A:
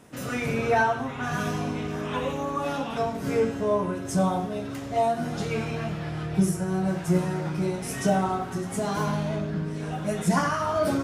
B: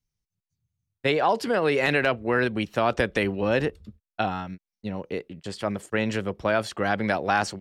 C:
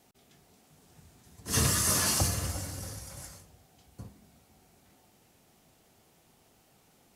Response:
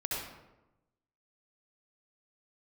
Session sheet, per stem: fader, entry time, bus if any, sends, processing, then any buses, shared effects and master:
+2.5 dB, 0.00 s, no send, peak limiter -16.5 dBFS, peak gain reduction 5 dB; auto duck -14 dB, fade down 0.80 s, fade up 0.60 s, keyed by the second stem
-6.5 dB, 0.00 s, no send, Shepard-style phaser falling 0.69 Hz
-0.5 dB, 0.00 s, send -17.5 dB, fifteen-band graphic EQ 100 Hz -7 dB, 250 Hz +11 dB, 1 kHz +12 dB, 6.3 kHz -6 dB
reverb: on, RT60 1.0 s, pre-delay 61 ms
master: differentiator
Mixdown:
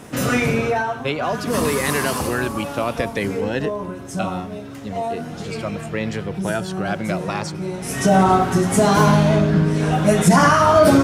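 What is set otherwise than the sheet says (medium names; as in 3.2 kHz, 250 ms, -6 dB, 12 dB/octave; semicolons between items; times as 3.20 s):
stem A +2.5 dB -> +13.0 dB; stem B -6.5 dB -> +1.5 dB; master: missing differentiator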